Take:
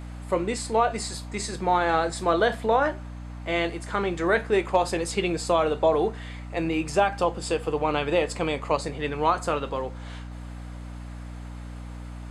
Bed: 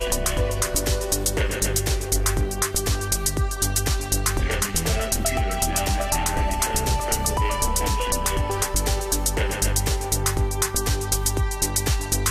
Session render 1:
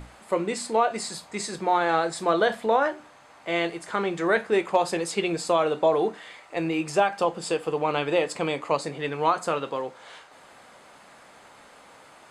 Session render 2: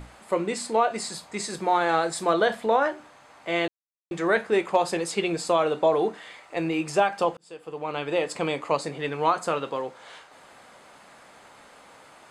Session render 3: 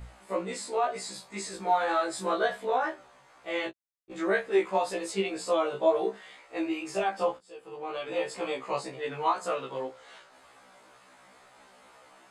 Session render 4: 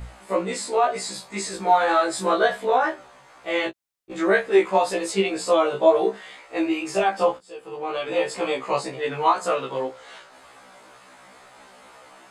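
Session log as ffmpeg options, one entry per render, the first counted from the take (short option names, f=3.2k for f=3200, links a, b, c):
-af "bandreject=f=60:t=h:w=6,bandreject=f=120:t=h:w=6,bandreject=f=180:t=h:w=6,bandreject=f=240:t=h:w=6,bandreject=f=300:t=h:w=6"
-filter_complex "[0:a]asettb=1/sr,asplit=3[a][b][c];[a]atrim=end=1.504[d];[b]atrim=start=1.5:end=2.34,asetpts=PTS-STARTPTS,afade=t=in:d=0.004:c=qsin,afade=t=out:st=0.836:d=0.004:c=qsin,highshelf=f=9k:g=8.5[e];[c]atrim=start=2.336[f];[d][e]acrossfade=d=0.004:c1=hsin:c2=qsin[g];[g][f]acrossfade=d=0.004:c1=qsin:c2=hsin,asplit=4[h][i][j][k];[h]atrim=end=3.68,asetpts=PTS-STARTPTS,afade=t=out:st=3.676:d=0.004:c=hsin[l];[i]atrim=start=3.68:end=4.11,asetpts=PTS-STARTPTS,volume=0[m];[j]atrim=start=4.11:end=7.37,asetpts=PTS-STARTPTS,afade=t=in:d=0.004:c=hsin,afade=t=out:st=3.256:d=0.004:c=hsin[n];[k]atrim=start=7.37,asetpts=PTS-STARTPTS,afade=t=in:d=1.02[o];[l][m][n][o]concat=n=4:v=0:a=1"
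-af "flanger=delay=17:depth=4:speed=2,afftfilt=real='re*1.73*eq(mod(b,3),0)':imag='im*1.73*eq(mod(b,3),0)':win_size=2048:overlap=0.75"
-af "volume=7.5dB"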